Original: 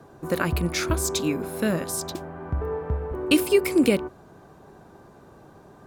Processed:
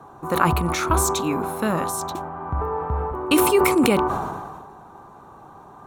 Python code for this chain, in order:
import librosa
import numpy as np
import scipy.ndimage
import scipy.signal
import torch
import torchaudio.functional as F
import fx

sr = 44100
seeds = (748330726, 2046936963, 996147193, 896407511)

y = fx.band_shelf(x, sr, hz=1000.0, db=11.0, octaves=1.0)
y = fx.notch(y, sr, hz=4900.0, q=6.1)
y = fx.sustainer(y, sr, db_per_s=34.0)